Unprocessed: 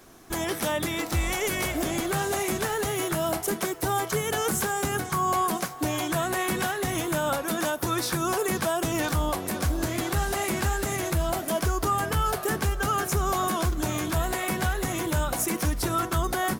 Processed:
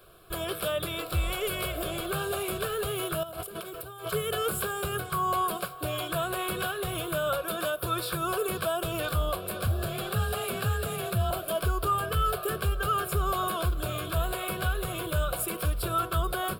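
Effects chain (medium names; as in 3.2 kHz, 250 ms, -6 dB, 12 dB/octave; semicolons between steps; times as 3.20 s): 3.23–4.10 s: compressor with a negative ratio -36 dBFS, ratio -1; static phaser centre 1.3 kHz, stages 8; 9.67–11.31 s: frequency shift +28 Hz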